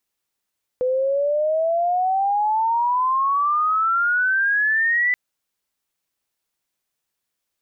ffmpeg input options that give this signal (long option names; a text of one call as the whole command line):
ffmpeg -f lavfi -i "aevalsrc='pow(10,(-17.5+1.5*t/4.33)/20)*sin(2*PI*500*4.33/log(2000/500)*(exp(log(2000/500)*t/4.33)-1))':duration=4.33:sample_rate=44100" out.wav